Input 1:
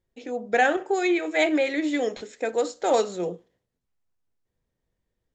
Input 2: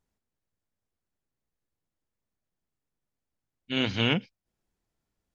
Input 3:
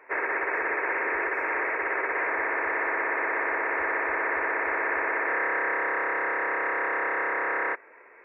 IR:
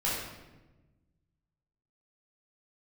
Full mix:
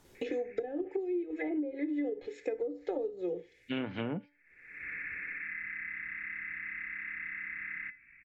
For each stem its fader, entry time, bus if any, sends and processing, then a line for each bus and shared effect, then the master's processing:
−2.5 dB, 0.05 s, no send, de-essing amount 70%; flat-topped bell 1,100 Hz −10.5 dB 1.2 octaves; comb filter 2.4 ms, depth 85%
−2.5 dB, 0.00 s, no send, no processing
−14.5 dB, 0.15 s, no send, elliptic band-stop filter 160–2,400 Hz, stop band 60 dB; spectral tilt −2 dB per octave; automatic ducking −19 dB, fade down 1.80 s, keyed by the second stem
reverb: not used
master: treble cut that deepens with the level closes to 400 Hz, closed at −20 dBFS; tuned comb filter 290 Hz, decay 0.3 s, harmonics all, mix 60%; multiband upward and downward compressor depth 100%

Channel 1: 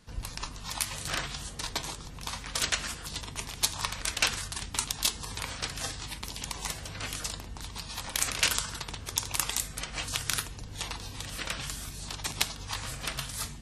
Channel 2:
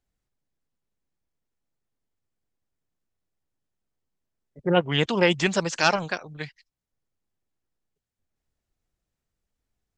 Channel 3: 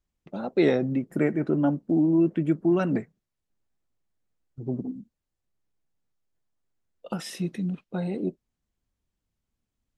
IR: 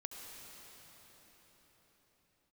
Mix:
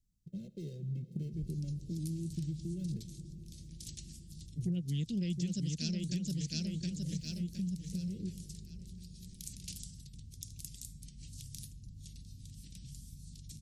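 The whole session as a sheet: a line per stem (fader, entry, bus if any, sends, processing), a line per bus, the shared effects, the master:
−16.5 dB, 1.25 s, no send, no echo send, low-shelf EQ 170 Hz +9.5 dB
0.0 dB, 0.00 s, no send, echo send −4.5 dB, no processing
−7.5 dB, 0.00 s, send −6 dB, no echo send, running median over 25 samples; comb filter 1.9 ms, depth 94%; downward compressor 4 to 1, threshold −31 dBFS, peak gain reduction 13 dB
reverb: on, pre-delay 64 ms
echo: repeating echo 715 ms, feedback 33%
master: Chebyshev band-stop filter 190–5,300 Hz, order 2; parametric band 170 Hz +7 dB 1.4 octaves; downward compressor 6 to 1, threshold −33 dBFS, peak gain reduction 16 dB

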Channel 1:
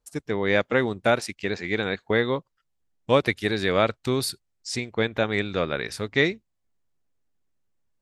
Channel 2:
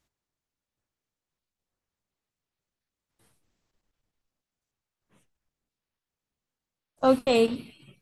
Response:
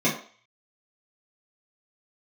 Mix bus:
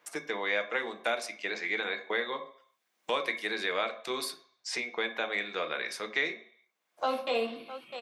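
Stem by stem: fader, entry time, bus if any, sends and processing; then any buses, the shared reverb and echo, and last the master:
−7.0 dB, 0.00 s, send −17 dB, no echo send, no processing
−5.5 dB, 0.00 s, send −12 dB, echo send −14.5 dB, parametric band 8,600 Hz −14 dB 1.3 octaves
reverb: on, RT60 0.45 s, pre-delay 3 ms
echo: single-tap delay 654 ms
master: high-pass filter 740 Hz 12 dB per octave; multiband upward and downward compressor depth 70%

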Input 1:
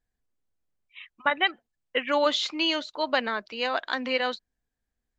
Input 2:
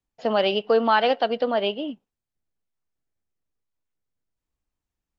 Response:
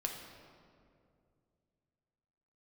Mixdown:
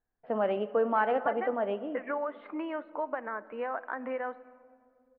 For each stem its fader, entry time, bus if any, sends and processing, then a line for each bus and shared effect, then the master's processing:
+2.5 dB, 0.00 s, send −12.5 dB, low-pass filter 1,500 Hz 12 dB per octave; low-shelf EQ 270 Hz −11 dB; downward compressor 6 to 1, threshold −35 dBFS, peak gain reduction 14 dB
−9.5 dB, 0.05 s, send −9 dB, no processing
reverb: on, RT60 2.4 s, pre-delay 5 ms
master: low-pass filter 1,900 Hz 24 dB per octave

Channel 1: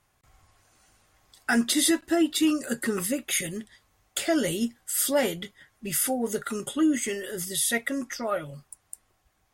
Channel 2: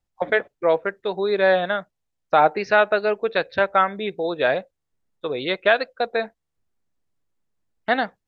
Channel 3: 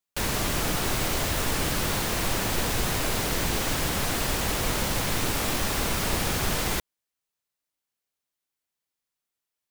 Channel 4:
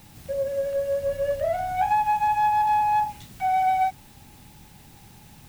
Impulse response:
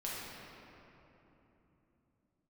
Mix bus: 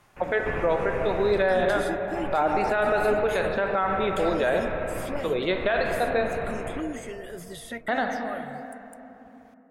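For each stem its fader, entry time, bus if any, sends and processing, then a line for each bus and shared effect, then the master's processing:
−8.5 dB, 0.00 s, no send, multiband upward and downward compressor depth 70%
−2.5 dB, 0.00 s, send −5 dB, no processing
0.0 dB, 0.00 s, send −16 dB, elliptic low-pass filter 2,600 Hz; gate pattern "x..xxxxxxxx" 98 BPM −12 dB; automatic ducking −10 dB, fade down 1.85 s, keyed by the second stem
−19.5 dB, 0.25 s, no send, no processing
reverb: on, RT60 3.3 s, pre-delay 5 ms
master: high-shelf EQ 4,000 Hz −10 dB; brickwall limiter −14 dBFS, peak gain reduction 10 dB

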